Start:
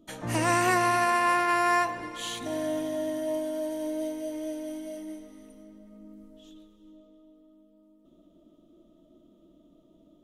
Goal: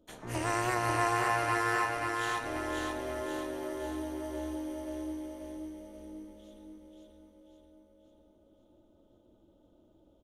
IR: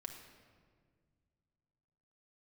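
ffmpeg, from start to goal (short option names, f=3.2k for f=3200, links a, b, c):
-filter_complex "[0:a]tremolo=f=240:d=0.974,aecho=1:1:535|1070|1605|2140|2675|3210|3745:0.708|0.375|0.199|0.105|0.0559|0.0296|0.0157,asplit=2[a][b];[1:a]atrim=start_sample=2205,asetrate=70560,aresample=44100[c];[b][c]afir=irnorm=-1:irlink=0,volume=1dB[d];[a][d]amix=inputs=2:normalize=0,volume=-6.5dB"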